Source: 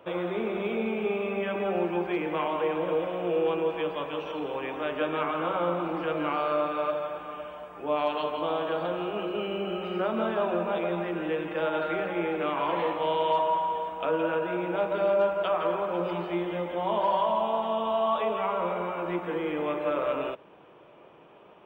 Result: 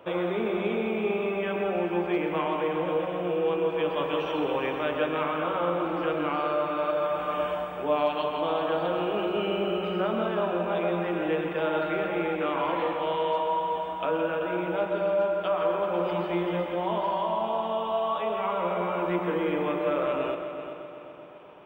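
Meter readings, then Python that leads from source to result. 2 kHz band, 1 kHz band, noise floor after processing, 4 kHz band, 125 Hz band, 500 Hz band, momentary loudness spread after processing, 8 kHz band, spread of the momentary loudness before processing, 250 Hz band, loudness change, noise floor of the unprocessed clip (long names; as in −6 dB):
+1.5 dB, 0.0 dB, −37 dBFS, +1.5 dB, +2.5 dB, +1.0 dB, 3 LU, can't be measured, 6 LU, +2.0 dB, +1.0 dB, −53 dBFS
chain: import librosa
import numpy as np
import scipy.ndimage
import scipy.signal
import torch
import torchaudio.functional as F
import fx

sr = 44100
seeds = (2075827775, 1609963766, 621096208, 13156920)

p1 = fx.rider(x, sr, range_db=10, speed_s=0.5)
y = p1 + fx.echo_heads(p1, sr, ms=128, heads='first and third', feedback_pct=58, wet_db=-11, dry=0)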